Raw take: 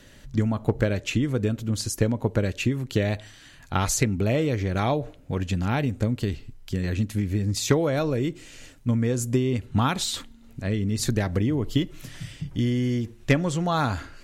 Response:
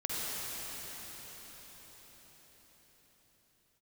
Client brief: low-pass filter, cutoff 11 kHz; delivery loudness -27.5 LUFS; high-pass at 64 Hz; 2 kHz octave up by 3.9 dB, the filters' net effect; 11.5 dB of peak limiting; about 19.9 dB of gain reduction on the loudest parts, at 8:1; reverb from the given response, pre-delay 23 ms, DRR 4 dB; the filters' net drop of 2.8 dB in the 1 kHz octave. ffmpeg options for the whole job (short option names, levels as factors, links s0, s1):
-filter_complex "[0:a]highpass=64,lowpass=11000,equalizer=f=1000:t=o:g=-6,equalizer=f=2000:t=o:g=6.5,acompressor=threshold=0.0141:ratio=8,alimiter=level_in=2.66:limit=0.0631:level=0:latency=1,volume=0.376,asplit=2[s0][s1];[1:a]atrim=start_sample=2205,adelay=23[s2];[s1][s2]afir=irnorm=-1:irlink=0,volume=0.282[s3];[s0][s3]amix=inputs=2:normalize=0,volume=4.73"